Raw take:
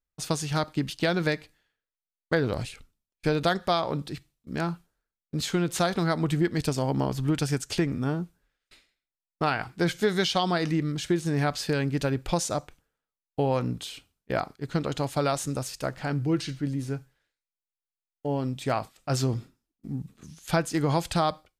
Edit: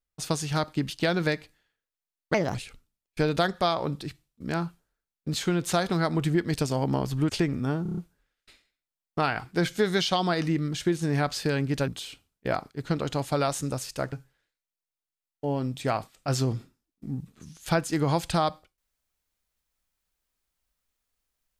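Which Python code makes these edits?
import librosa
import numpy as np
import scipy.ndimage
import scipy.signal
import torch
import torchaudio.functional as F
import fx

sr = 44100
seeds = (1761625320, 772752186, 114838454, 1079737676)

y = fx.edit(x, sr, fx.speed_span(start_s=2.34, length_s=0.27, speed=1.32),
    fx.cut(start_s=7.36, length_s=0.32),
    fx.stutter(start_s=8.21, slice_s=0.03, count=6),
    fx.cut(start_s=12.11, length_s=1.61),
    fx.cut(start_s=15.97, length_s=0.97), tone=tone)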